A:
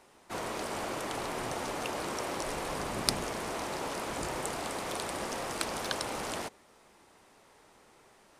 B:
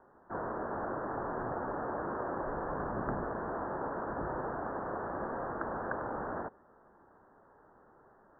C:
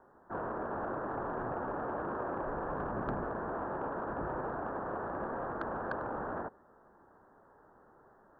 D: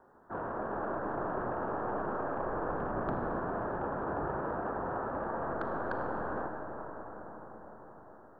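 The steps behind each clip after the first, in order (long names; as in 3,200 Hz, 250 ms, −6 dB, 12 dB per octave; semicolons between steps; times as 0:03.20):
Butterworth low-pass 1,700 Hz 96 dB per octave
soft clipping −22.5 dBFS, distortion −29 dB
convolution reverb RT60 6.1 s, pre-delay 4 ms, DRR 3.5 dB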